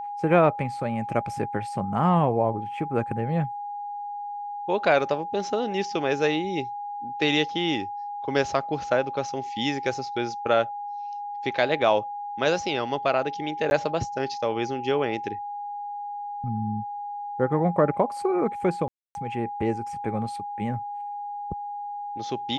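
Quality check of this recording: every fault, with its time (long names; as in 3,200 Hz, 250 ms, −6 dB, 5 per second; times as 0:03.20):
whistle 820 Hz −31 dBFS
0:13.70–0:13.71: drop-out 11 ms
0:18.88–0:19.15: drop-out 271 ms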